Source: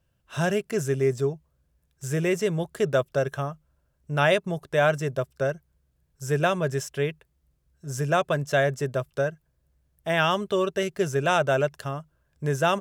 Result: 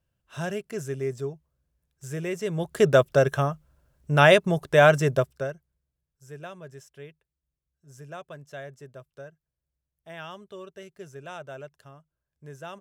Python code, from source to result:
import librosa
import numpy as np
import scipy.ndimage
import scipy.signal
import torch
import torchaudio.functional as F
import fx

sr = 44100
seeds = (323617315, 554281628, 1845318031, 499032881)

y = fx.gain(x, sr, db=fx.line((2.39, -6.5), (2.81, 5.0), (5.18, 5.0), (5.49, -6.5), (6.25, -17.5)))